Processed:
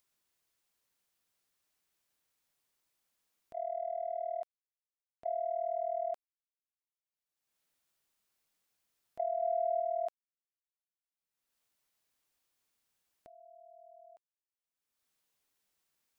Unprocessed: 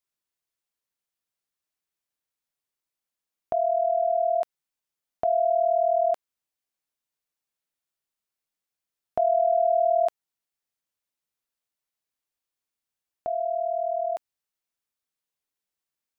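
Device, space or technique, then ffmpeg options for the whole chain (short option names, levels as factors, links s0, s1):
upward and downward compression: -filter_complex "[0:a]agate=range=0.0126:threshold=0.0891:ratio=16:detection=peak,acompressor=mode=upward:threshold=0.00501:ratio=2.5,acompressor=threshold=0.0251:ratio=4,asettb=1/sr,asplit=3[s0][s1][s2];[s0]atrim=end=9.414[s3];[s1]atrim=start=9.41:end=9.81,asetpts=PTS-STARTPTS,afade=t=in:d=0.004:c=qsin,afade=t=out:st=0.396:d=0.004:c=qsin,aecho=1:1:4.4:0.35,atrim=end_sample=17640[s4];[s2]atrim=start=9.806[s5];[s3][s4]acrossfade=d=0.004:c1=hsin:c2=qsin[s6];[s6][s5]acrossfade=d=0.004:c1=qsin:c2=hsin,volume=0.891"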